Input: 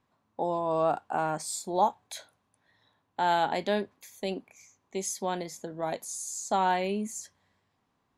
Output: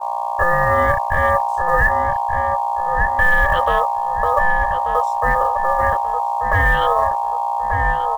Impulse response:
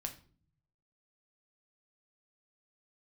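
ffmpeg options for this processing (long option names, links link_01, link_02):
-filter_complex "[0:a]afwtdn=0.0126,asplit=3[link_01][link_02][link_03];[link_01]bandpass=frequency=300:width_type=q:width=8,volume=0dB[link_04];[link_02]bandpass=frequency=870:width_type=q:width=8,volume=-6dB[link_05];[link_03]bandpass=frequency=2240:width_type=q:width=8,volume=-9dB[link_06];[link_04][link_05][link_06]amix=inputs=3:normalize=0,aeval=exprs='val(0)+0.00501*(sin(2*PI*60*n/s)+sin(2*PI*2*60*n/s)/2+sin(2*PI*3*60*n/s)/3+sin(2*PI*4*60*n/s)/4+sin(2*PI*5*60*n/s)/5)':channel_layout=same,equalizer=frequency=630:width_type=o:width=0.35:gain=-11,agate=range=-33dB:threshold=-44dB:ratio=3:detection=peak,aemphasis=mode=reproduction:type=cd,acrusher=bits=8:mode=log:mix=0:aa=0.000001,aeval=exprs='val(0)*sin(2*PI*870*n/s)':channel_layout=same,asplit=2[link_07][link_08];[link_08]adelay=1185,lowpass=frequency=1900:poles=1,volume=-8dB,asplit=2[link_09][link_10];[link_10]adelay=1185,lowpass=frequency=1900:poles=1,volume=0.38,asplit=2[link_11][link_12];[link_12]adelay=1185,lowpass=frequency=1900:poles=1,volume=0.38,asplit=2[link_13][link_14];[link_14]adelay=1185,lowpass=frequency=1900:poles=1,volume=0.38[link_15];[link_07][link_09][link_11][link_13][link_15]amix=inputs=5:normalize=0,alimiter=level_in=34dB:limit=-1dB:release=50:level=0:latency=1,volume=-4dB"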